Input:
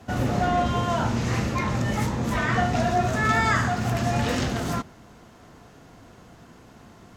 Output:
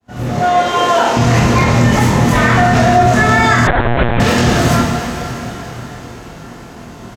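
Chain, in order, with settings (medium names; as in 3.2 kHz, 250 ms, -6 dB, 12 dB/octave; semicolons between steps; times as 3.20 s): fade-in on the opening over 0.81 s; 0.39–1.17 s: high-pass 350 Hz 24 dB/octave; early reflections 25 ms -3.5 dB, 46 ms -7.5 dB; plate-style reverb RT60 4.5 s, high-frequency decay 0.95×, DRR 4 dB; 3.67–4.20 s: LPC vocoder at 8 kHz pitch kept; loudness maximiser +13 dB; trim -1 dB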